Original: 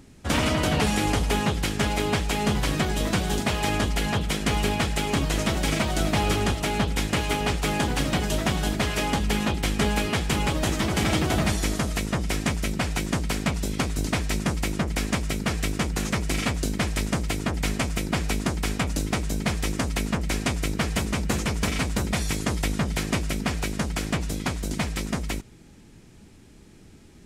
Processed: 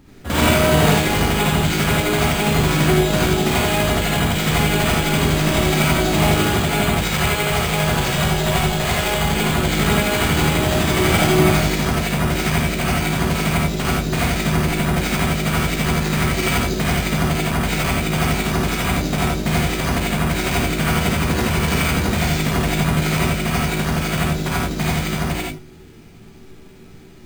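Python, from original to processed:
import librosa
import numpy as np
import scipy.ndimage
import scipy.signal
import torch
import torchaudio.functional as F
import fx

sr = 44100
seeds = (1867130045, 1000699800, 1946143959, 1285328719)

y = fx.peak_eq(x, sr, hz=280.0, db=-11.0, octaves=0.52, at=(6.95, 9.29))
y = fx.echo_multitap(y, sr, ms=(52, 79, 92), db=(-4.5, -4.0, -7.5))
y = fx.rev_gated(y, sr, seeds[0], gate_ms=110, shape='rising', drr_db=-5.0)
y = np.repeat(scipy.signal.resample_poly(y, 1, 4), 4)[:len(y)]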